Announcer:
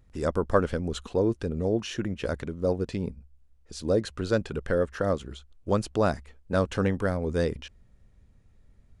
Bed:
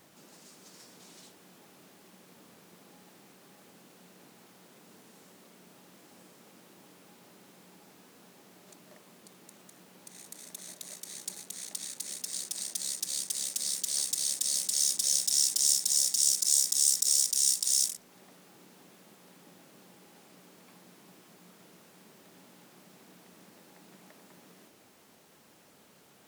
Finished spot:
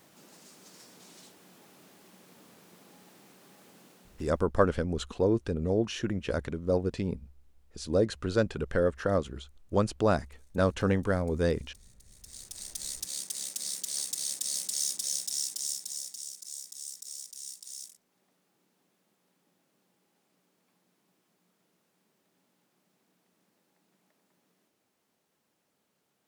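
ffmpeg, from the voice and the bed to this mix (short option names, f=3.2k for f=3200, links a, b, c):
-filter_complex "[0:a]adelay=4050,volume=-1dB[a];[1:a]volume=20dB,afade=t=out:st=3.85:d=0.64:silence=0.0707946,afade=t=in:st=12.1:d=0.74:silence=0.1,afade=t=out:st=14.69:d=1.61:silence=0.199526[b];[a][b]amix=inputs=2:normalize=0"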